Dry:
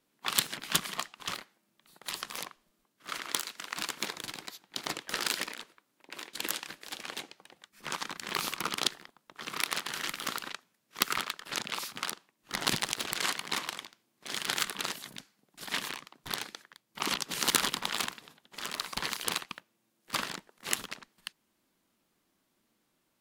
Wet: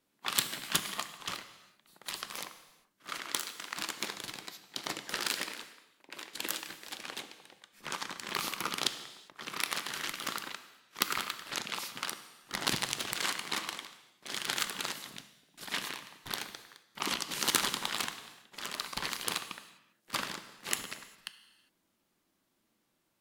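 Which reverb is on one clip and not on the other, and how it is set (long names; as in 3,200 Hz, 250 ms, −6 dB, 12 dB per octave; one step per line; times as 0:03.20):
reverb whose tail is shaped and stops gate 430 ms falling, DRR 9.5 dB
level −2 dB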